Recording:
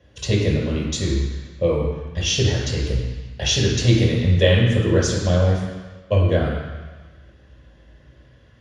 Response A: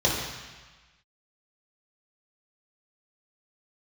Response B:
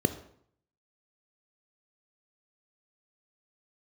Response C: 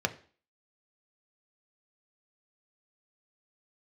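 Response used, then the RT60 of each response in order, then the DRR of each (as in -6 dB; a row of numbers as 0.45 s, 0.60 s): A; 1.3 s, 0.65 s, 0.45 s; -5.0 dB, 10.0 dB, 6.0 dB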